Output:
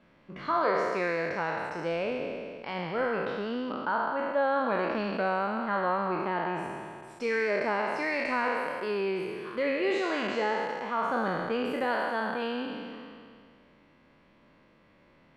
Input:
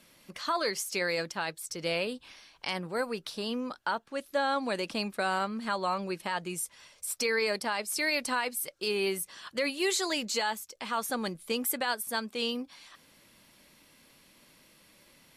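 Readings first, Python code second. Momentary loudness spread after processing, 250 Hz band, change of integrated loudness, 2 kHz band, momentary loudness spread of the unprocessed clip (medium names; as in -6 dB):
8 LU, +2.5 dB, +1.5 dB, +1.5 dB, 8 LU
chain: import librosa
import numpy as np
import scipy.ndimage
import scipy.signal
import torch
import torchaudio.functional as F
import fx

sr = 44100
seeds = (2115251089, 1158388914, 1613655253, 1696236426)

y = fx.spec_trails(x, sr, decay_s=2.16)
y = scipy.signal.sosfilt(scipy.signal.butter(2, 1600.0, 'lowpass', fs=sr, output='sos'), y)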